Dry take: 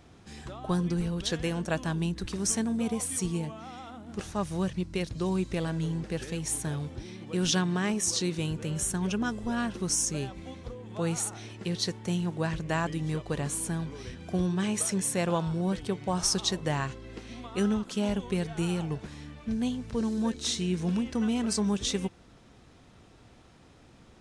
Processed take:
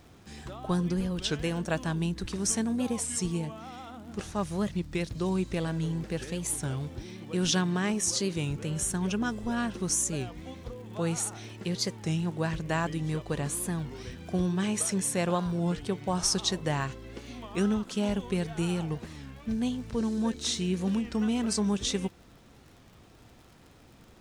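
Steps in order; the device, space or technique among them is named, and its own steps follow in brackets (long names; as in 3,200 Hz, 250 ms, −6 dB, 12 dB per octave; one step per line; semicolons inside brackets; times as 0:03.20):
warped LP (wow of a warped record 33 1/3 rpm, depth 160 cents; surface crackle 75 per second −46 dBFS; pink noise bed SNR 38 dB)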